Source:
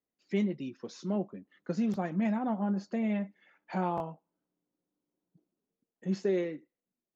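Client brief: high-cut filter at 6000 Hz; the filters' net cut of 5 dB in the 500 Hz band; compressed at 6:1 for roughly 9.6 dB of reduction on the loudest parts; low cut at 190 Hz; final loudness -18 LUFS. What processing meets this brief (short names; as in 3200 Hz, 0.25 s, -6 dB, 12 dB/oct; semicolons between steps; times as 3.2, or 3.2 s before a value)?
HPF 190 Hz; LPF 6000 Hz; bell 500 Hz -7 dB; compressor 6:1, threshold -39 dBFS; gain +26.5 dB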